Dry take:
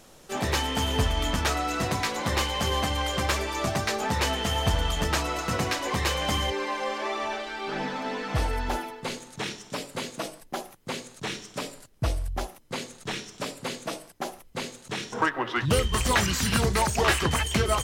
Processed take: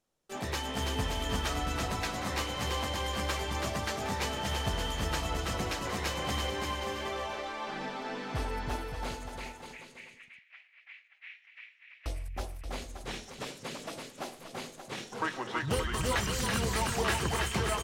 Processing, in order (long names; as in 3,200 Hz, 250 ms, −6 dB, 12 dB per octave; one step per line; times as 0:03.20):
noise gate with hold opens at −39 dBFS
0:09.38–0:12.06: flat-topped band-pass 2,200 Hz, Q 2.9
bouncing-ball delay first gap 330 ms, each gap 0.75×, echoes 5
level −8.5 dB